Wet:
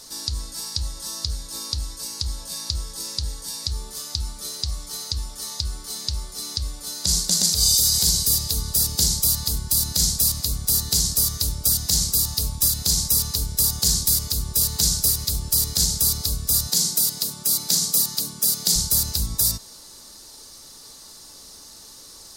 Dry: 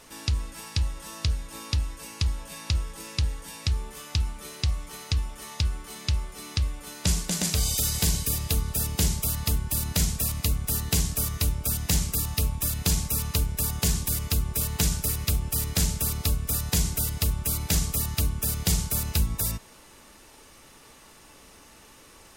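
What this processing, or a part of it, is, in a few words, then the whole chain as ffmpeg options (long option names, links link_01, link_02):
over-bright horn tweeter: -filter_complex "[0:a]asettb=1/sr,asplit=3[link_01][link_02][link_03];[link_01]atrim=end=16.674[link_04];[link_02]atrim=start=16.67:end=18.76,asetpts=PTS-STARTPTS,afade=type=in:duration=0.004:curve=qsin,afade=type=out:start_time=2.086:duration=0.004:curve=qsin,highpass=frequency=160:width=0.5412,highpass=frequency=160:width=1.3066[link_05];[link_03]atrim=start=18.756[link_06];[link_04][link_05]acrossfade=duration=0.004:curve1=hsin:curve2=qsin[link_07];[link_07][link_06]acrossfade=duration=0.004:curve1=qsin:curve2=hsin,highshelf=frequency=3400:width_type=q:width=3:gain=9,alimiter=limit=-7dB:level=0:latency=1:release=94"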